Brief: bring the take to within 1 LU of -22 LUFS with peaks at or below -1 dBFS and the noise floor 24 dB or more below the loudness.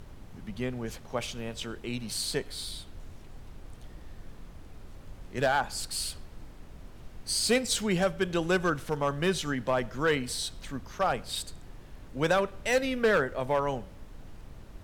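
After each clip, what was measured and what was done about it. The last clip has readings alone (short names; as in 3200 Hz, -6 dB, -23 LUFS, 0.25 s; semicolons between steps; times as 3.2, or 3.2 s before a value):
clipped 0.4%; flat tops at -18.0 dBFS; noise floor -48 dBFS; noise floor target -54 dBFS; loudness -30.0 LUFS; peak -18.0 dBFS; loudness target -22.0 LUFS
-> clip repair -18 dBFS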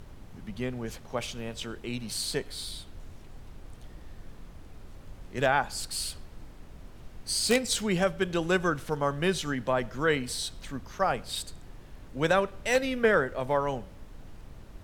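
clipped 0.0%; noise floor -48 dBFS; noise floor target -54 dBFS
-> noise print and reduce 6 dB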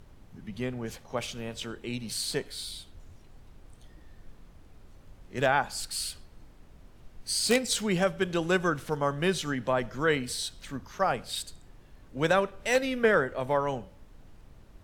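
noise floor -54 dBFS; loudness -29.0 LUFS; peak -9.0 dBFS; loudness target -22.0 LUFS
-> gain +7 dB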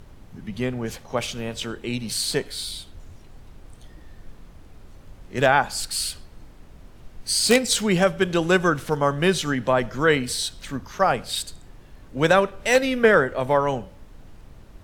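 loudness -22.0 LUFS; peak -2.0 dBFS; noise floor -47 dBFS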